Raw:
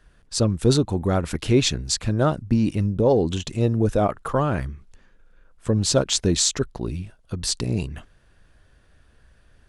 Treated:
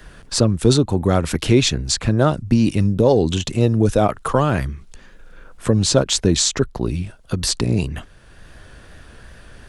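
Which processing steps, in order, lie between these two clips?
wow and flutter 35 cents; three bands compressed up and down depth 40%; trim +4.5 dB

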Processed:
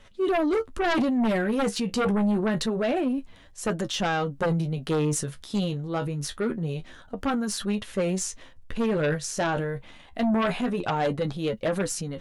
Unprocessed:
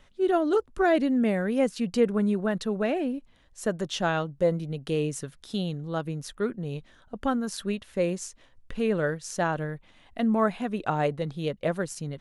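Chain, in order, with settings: flange 0.26 Hz, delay 9 ms, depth 6.4 ms, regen +39%; transient shaper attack +2 dB, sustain +7 dB; sine folder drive 10 dB, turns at -12.5 dBFS; trim -7.5 dB

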